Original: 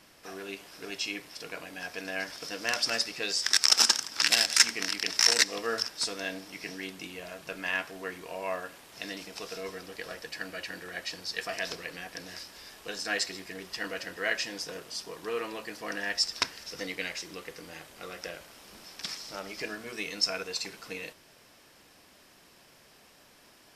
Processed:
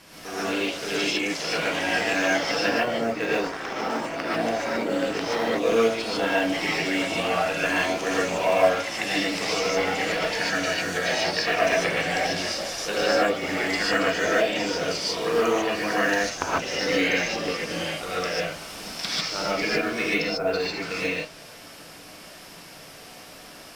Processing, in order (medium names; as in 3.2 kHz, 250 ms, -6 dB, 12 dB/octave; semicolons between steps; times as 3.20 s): low-pass that closes with the level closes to 650 Hz, closed at -26.5 dBFS; in parallel at -7 dB: short-mantissa float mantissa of 2-bit; on the sum: ever faster or slower copies 119 ms, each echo +3 st, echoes 3, each echo -6 dB; gated-style reverb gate 170 ms rising, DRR -7 dB; trim +3 dB